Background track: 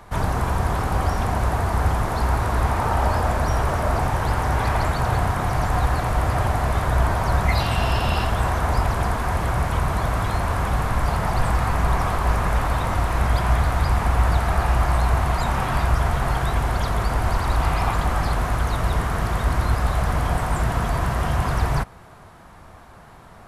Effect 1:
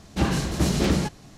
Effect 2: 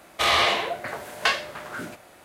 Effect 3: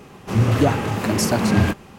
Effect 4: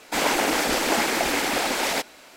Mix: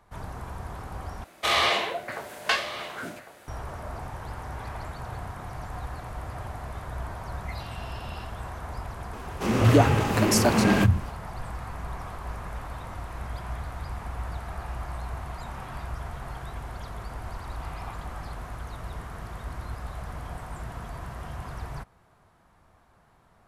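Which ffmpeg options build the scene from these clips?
-filter_complex "[0:a]volume=0.168[s0];[2:a]aecho=1:1:1103:0.188[s1];[3:a]acrossover=split=170[s2][s3];[s2]adelay=140[s4];[s4][s3]amix=inputs=2:normalize=0[s5];[s0]asplit=2[s6][s7];[s6]atrim=end=1.244[s8];[s1]atrim=end=2.24,asetpts=PTS-STARTPTS,volume=0.75[s9];[s7]atrim=start=3.476[s10];[s5]atrim=end=1.98,asetpts=PTS-STARTPTS,volume=0.944,afade=t=in:d=0.004:c=hsin,afade=t=out:st=1.976:d=0.004:c=hsin,adelay=9130[s11];[s8][s9]acrossfade=d=0.004:c1=hsin:c2=hsin[s12];[s12][s10]acrossfade=d=0.004:c1=hsin:c2=hsin[s13];[s13][s11]amix=inputs=2:normalize=0"

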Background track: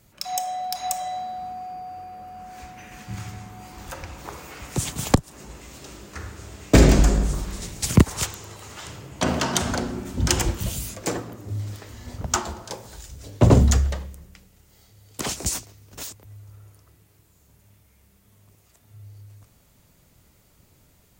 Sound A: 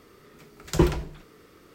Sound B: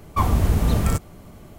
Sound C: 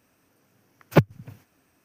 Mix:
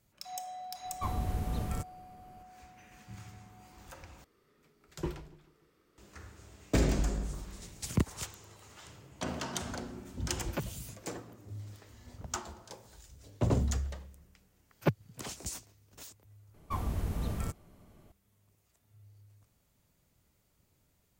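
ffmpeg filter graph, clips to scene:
-filter_complex "[2:a]asplit=2[s0][s1];[3:a]asplit=2[s2][s3];[0:a]volume=0.2[s4];[1:a]aecho=1:1:146|292|438|584:0.0841|0.0446|0.0236|0.0125[s5];[s2]acompressor=threshold=0.0708:ratio=6:attack=3.2:release=140:knee=1:detection=peak[s6];[s4]asplit=3[s7][s8][s9];[s7]atrim=end=4.244[s10];[s5]atrim=end=1.74,asetpts=PTS-STARTPTS,volume=0.15[s11];[s8]atrim=start=5.976:end=16.544[s12];[s1]atrim=end=1.58,asetpts=PTS-STARTPTS,volume=0.178[s13];[s9]atrim=start=18.116[s14];[s0]atrim=end=1.58,asetpts=PTS-STARTPTS,volume=0.178,afade=t=in:d=0.004:c=hsin,afade=t=out:st=1.576:d=0.004:c=hsin,adelay=850[s15];[s6]atrim=end=1.84,asetpts=PTS-STARTPTS,volume=0.398,afade=t=in:d=0.004:c=hsin,afade=t=out:st=1.836:d=0.004:c=hsin,adelay=9610[s16];[s3]atrim=end=1.84,asetpts=PTS-STARTPTS,volume=0.266,afade=t=in:d=0.004:c=hsin,afade=t=out:st=1.836:d=0.004:c=hsin,adelay=13900[s17];[s10][s11]acrossfade=d=0.004:c1=hsin:c2=hsin[s18];[s18][s12]acrossfade=d=0.004:c1=hsin:c2=hsin[s19];[s19][s13]acrossfade=d=0.004:c1=hsin:c2=hsin[s20];[s20][s14]acrossfade=d=0.004:c1=hsin:c2=hsin[s21];[s21][s15][s16][s17]amix=inputs=4:normalize=0"

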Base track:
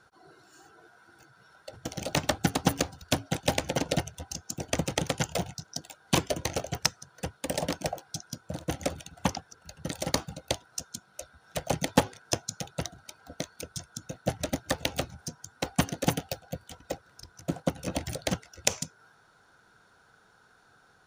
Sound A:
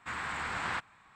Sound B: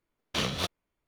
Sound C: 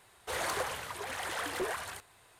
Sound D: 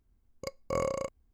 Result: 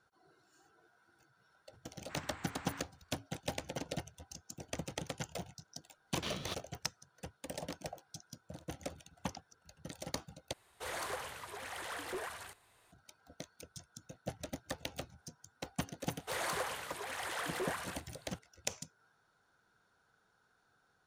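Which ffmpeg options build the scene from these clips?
-filter_complex "[3:a]asplit=2[s0][s1];[0:a]volume=0.237[s2];[s1]lowshelf=f=130:g=-8[s3];[s2]asplit=2[s4][s5];[s4]atrim=end=10.534[s6];[s0]atrim=end=2.39,asetpts=PTS-STARTPTS,volume=0.473[s7];[s5]atrim=start=12.916[s8];[1:a]atrim=end=1.15,asetpts=PTS-STARTPTS,volume=0.168,afade=t=in:d=0.004:c=hsin,afade=t=out:st=1.146:d=0.004:c=hsin,adelay=2030[s9];[2:a]atrim=end=1.07,asetpts=PTS-STARTPTS,volume=0.282,afade=t=in:d=0.004:c=hsin,afade=t=out:st=1.066:d=0.004:c=hsin,adelay=5880[s10];[s3]atrim=end=2.39,asetpts=PTS-STARTPTS,volume=0.708,afade=t=in:d=0.004:c=hsin,afade=t=out:st=2.386:d=0.004:c=hsin,adelay=16000[s11];[s6][s7]acrossfade=d=0.004:c1=hsin:c2=hsin[s12];[s12][s8]acrossfade=d=0.004:c1=hsin:c2=hsin[s13];[s13][s9][s10][s11]amix=inputs=4:normalize=0"

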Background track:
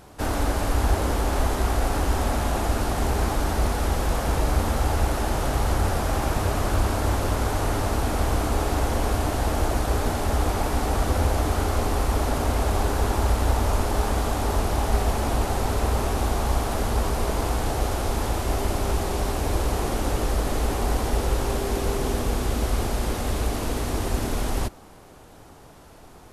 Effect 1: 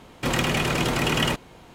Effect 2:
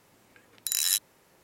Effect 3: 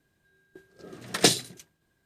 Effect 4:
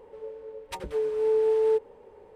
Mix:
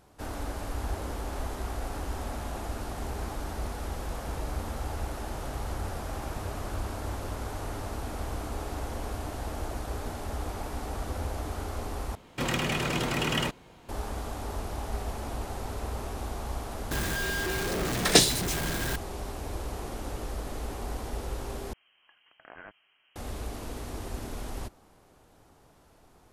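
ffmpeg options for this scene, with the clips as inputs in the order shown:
-filter_complex "[0:a]volume=0.266[s0];[3:a]aeval=exprs='val(0)+0.5*0.0501*sgn(val(0))':c=same[s1];[2:a]lowpass=f=2800:t=q:w=0.5098,lowpass=f=2800:t=q:w=0.6013,lowpass=f=2800:t=q:w=0.9,lowpass=f=2800:t=q:w=2.563,afreqshift=-3300[s2];[s0]asplit=3[s3][s4][s5];[s3]atrim=end=12.154[s6];[1:a]atrim=end=1.74,asetpts=PTS-STARTPTS,volume=0.531[s7];[s4]atrim=start=13.886:end=21.734[s8];[s2]atrim=end=1.43,asetpts=PTS-STARTPTS,volume=0.562[s9];[s5]atrim=start=23.156[s10];[s1]atrim=end=2.05,asetpts=PTS-STARTPTS,afade=t=in:d=0.004:c=hsin,afade=t=out:st=2.046:d=0.004:c=hsin,adelay=16910[s11];[s6][s7]acrossfade=d=0.004:c1=hsin:c2=hsin[s12];[s12][s8]acrossfade=d=0.004:c1=hsin:c2=hsin[s13];[s13][s9]acrossfade=d=0.004:c1=hsin:c2=hsin[s14];[s14][s10]acrossfade=d=0.004:c1=hsin:c2=hsin[s15];[s15][s11]amix=inputs=2:normalize=0"

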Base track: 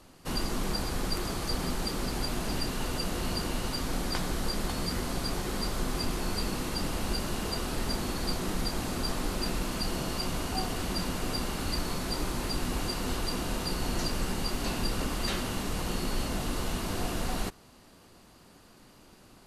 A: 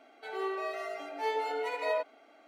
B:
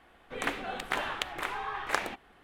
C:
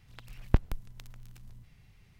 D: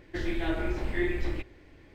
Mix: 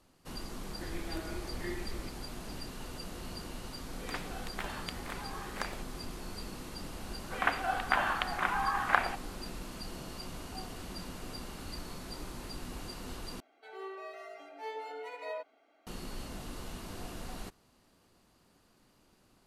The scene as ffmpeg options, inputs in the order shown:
-filter_complex "[2:a]asplit=2[s0][s1];[0:a]volume=0.282[s2];[s1]highpass=270,equalizer=f=430:t=q:w=4:g=-9,equalizer=f=740:t=q:w=4:g=8,equalizer=f=1100:t=q:w=4:g=6,equalizer=f=1500:t=q:w=4:g=7,lowpass=f=3500:w=0.5412,lowpass=f=3500:w=1.3066[s3];[s2]asplit=2[s4][s5];[s4]atrim=end=13.404[s6];[1:a]atrim=end=2.47,asetpts=PTS-STARTPTS,volume=0.355[s7];[s5]atrim=start=15.866[s8];[4:a]atrim=end=1.94,asetpts=PTS-STARTPTS,volume=0.299,afade=t=in:d=0.004:c=hsin,afade=t=out:st=1.936:d=0.004:c=hsin,adelay=670[s9];[s0]atrim=end=2.43,asetpts=PTS-STARTPTS,volume=0.355,afade=t=in:d=0.004:c=hsin,afade=t=out:st=2.426:d=0.004:c=hsin,adelay=3670[s10];[s3]atrim=end=2.43,asetpts=PTS-STARTPTS,volume=0.841,afade=t=in:d=0.004:c=hsin,afade=t=out:st=2.426:d=0.004:c=hsin,adelay=7000[s11];[s6][s7]acrossfade=d=0.004:c1=hsin:c2=hsin[s12];[s12][s8]acrossfade=d=0.004:c1=hsin:c2=hsin[s13];[s13][s9][s10][s11]amix=inputs=4:normalize=0"

